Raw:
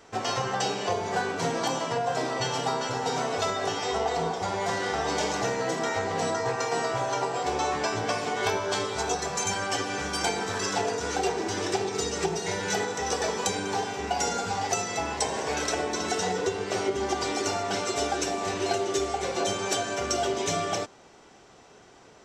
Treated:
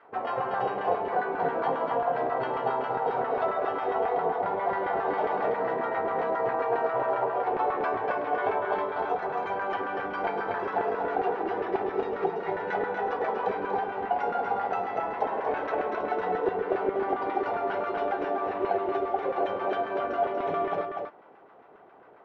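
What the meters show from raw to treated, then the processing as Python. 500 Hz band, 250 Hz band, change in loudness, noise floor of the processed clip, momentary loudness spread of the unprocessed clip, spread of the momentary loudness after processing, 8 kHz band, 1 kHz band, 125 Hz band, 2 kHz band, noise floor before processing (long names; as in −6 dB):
+1.0 dB, −3.0 dB, −0.5 dB, −53 dBFS, 2 LU, 3 LU, below −40 dB, +2.0 dB, −10.0 dB, −3.0 dB, −53 dBFS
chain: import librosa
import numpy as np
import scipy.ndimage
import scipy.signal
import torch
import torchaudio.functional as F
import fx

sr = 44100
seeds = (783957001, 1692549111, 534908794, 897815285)

p1 = fx.high_shelf(x, sr, hz=5700.0, db=-6.5)
p2 = fx.filter_lfo_bandpass(p1, sr, shape='saw_down', hz=7.4, low_hz=470.0, high_hz=1500.0, q=1.2)
p3 = fx.air_absorb(p2, sr, metres=400.0)
p4 = p3 + fx.echo_single(p3, sr, ms=240, db=-5.0, dry=0)
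y = p4 * 10.0 ** (4.5 / 20.0)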